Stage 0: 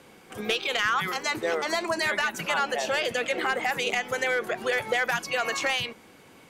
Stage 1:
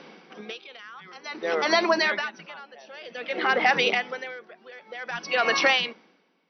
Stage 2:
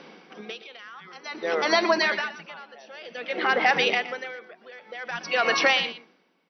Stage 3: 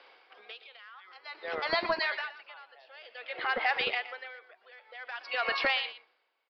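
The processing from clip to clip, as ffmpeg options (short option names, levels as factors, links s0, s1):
-af "afftfilt=real='re*between(b*sr/4096,160,6000)':imag='im*between(b*sr/4096,160,6000)':win_size=4096:overlap=0.75,aeval=exprs='val(0)*pow(10,-26*(0.5-0.5*cos(2*PI*0.53*n/s))/20)':c=same,volume=2.24"
-af "aecho=1:1:119:0.2"
-filter_complex "[0:a]acrossover=split=500|1800[s0][s1][s2];[s0]acrusher=bits=3:mix=0:aa=0.5[s3];[s3][s1][s2]amix=inputs=3:normalize=0,aresample=11025,aresample=44100,volume=0.447"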